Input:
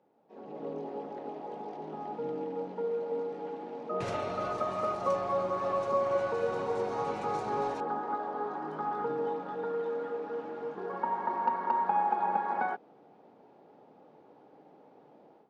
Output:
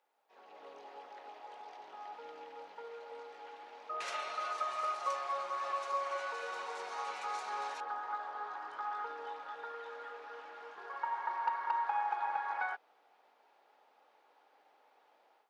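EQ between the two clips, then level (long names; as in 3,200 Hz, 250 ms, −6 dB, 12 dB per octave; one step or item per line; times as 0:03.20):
high-pass filter 1,400 Hz 12 dB per octave
+3.0 dB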